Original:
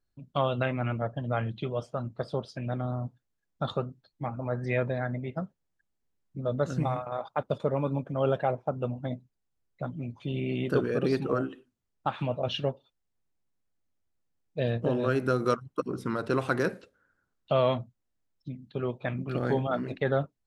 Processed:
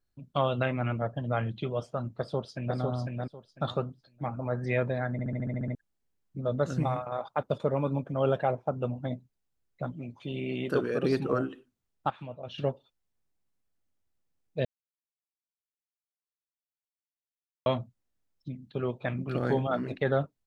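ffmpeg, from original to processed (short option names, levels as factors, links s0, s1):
-filter_complex "[0:a]asplit=2[s0][s1];[s1]afade=t=in:st=2.19:d=0.01,afade=t=out:st=2.77:d=0.01,aecho=0:1:500|1000|1500:0.749894|0.149979|0.0299958[s2];[s0][s2]amix=inputs=2:normalize=0,asettb=1/sr,asplit=3[s3][s4][s5];[s3]atrim=end=9.924[s6];[s4]atrim=start=9.92:end=11.04,asetpts=PTS-STARTPTS,afade=t=in:d=0.004:c=qsin,afade=t=out:st=1.116:d=0.004:c=qsin,lowshelf=f=150:g=-9.5[s7];[s5]atrim=start=11.036[s8];[s6][s7]acrossfade=d=0.004:c1=hsin:c2=qsin[s9];[s9][s8]acrossfade=d=0.004:c1=qsin:c2=hsin,asplit=14[s10][s11][s12][s13][s14][s15][s16][s17][s18][s19][s20][s21][s22][s23];[s10]atrim=end=5.192[s24];[s11]atrim=start=5.118:end=5.192[s25];[s12]atrim=start=5.118:end=5.192[s26];[s13]atrim=start=5.118:end=5.192[s27];[s14]atrim=start=5.118:end=5.192[s28];[s15]atrim=start=5.118:end=5.192[s29];[s16]atrim=start=5.118:end=5.192[s30];[s17]atrim=start=5.118:end=5.192[s31];[s18]atrim=start=5.118:end=5.192[s32];[s19]atrim=start=5.748:end=12.102[s33];[s20]atrim=start=12.098:end=12.582,asetpts=PTS-STARTPTS,volume=0.282[s34];[s21]atrim=start=12.578:end=14.65,asetpts=PTS-STARTPTS,afade=t=out:st=2.068:d=0.004:c=hsin[s35];[s22]atrim=start=14.65:end=17.66,asetpts=PTS-STARTPTS,volume=0[s36];[s23]atrim=start=17.66,asetpts=PTS-STARTPTS,afade=t=in:d=0.004:c=hsin[s37];[s24][s25]acrossfade=d=0.004:c1=hsin:c2=hsin[s38];[s38][s26]acrossfade=d=0.004:c1=hsin:c2=hsin[s39];[s39][s27]acrossfade=d=0.004:c1=hsin:c2=hsin[s40];[s40][s28]acrossfade=d=0.004:c1=hsin:c2=hsin[s41];[s41][s29]acrossfade=d=0.004:c1=hsin:c2=hsin[s42];[s42][s30]acrossfade=d=0.004:c1=hsin:c2=hsin[s43];[s43][s31]acrossfade=d=0.004:c1=hsin:c2=hsin[s44];[s44][s32]acrossfade=d=0.004:c1=hsin:c2=hsin[s45];[s45][s33]acrossfade=d=0.004:c1=hsin:c2=hsin[s46];[s46][s34]acrossfade=d=0.004:c1=hsin:c2=hsin[s47];[s35][s36][s37]concat=n=3:v=0:a=1[s48];[s47][s48]acrossfade=d=0.004:c1=hsin:c2=hsin"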